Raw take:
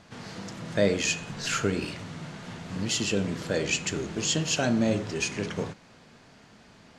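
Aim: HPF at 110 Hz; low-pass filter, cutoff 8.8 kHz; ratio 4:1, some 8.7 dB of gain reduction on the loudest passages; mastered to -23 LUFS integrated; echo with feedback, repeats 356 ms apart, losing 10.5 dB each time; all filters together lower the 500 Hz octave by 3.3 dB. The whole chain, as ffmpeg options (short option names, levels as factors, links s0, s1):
-af "highpass=110,lowpass=8800,equalizer=f=500:t=o:g=-4,acompressor=threshold=0.0251:ratio=4,aecho=1:1:356|712|1068:0.299|0.0896|0.0269,volume=4.22"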